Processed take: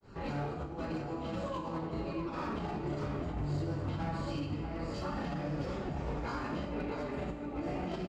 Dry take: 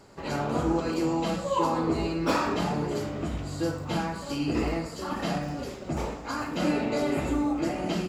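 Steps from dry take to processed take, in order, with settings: Bessel low-pass 3800 Hz, order 2; low shelf 140 Hz +8 dB; negative-ratio compressor -29 dBFS, ratio -0.5; limiter -24 dBFS, peak gain reduction 7.5 dB; grains 0.172 s, grains 20/s, spray 21 ms, pitch spread up and down by 0 st; hard clip -30 dBFS, distortion -20 dB; outdoor echo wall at 110 m, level -6 dB; Schroeder reverb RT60 1.1 s, combs from 28 ms, DRR 6 dB; gain -1.5 dB

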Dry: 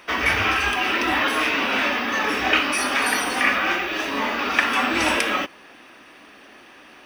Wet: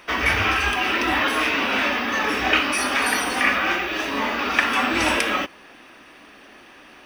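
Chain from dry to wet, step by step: low shelf 76 Hz +7.5 dB

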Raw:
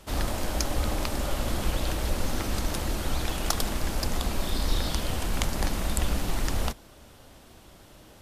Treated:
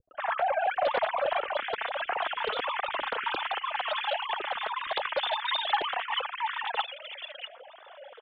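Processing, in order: sine-wave speech; 1.29–3.73 negative-ratio compressor -26 dBFS, ratio -0.5; three bands offset in time lows, mids, highs 0.11/0.76 s, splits 210/2500 Hz; flange 1.4 Hz, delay 2.2 ms, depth 2.6 ms, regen +13%; Doppler distortion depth 0.2 ms

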